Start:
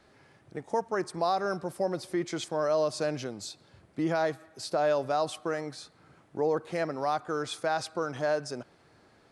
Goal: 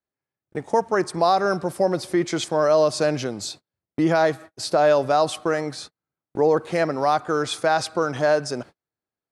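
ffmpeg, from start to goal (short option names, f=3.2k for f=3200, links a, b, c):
-af "agate=range=-41dB:threshold=-47dB:ratio=16:detection=peak,volume=9dB"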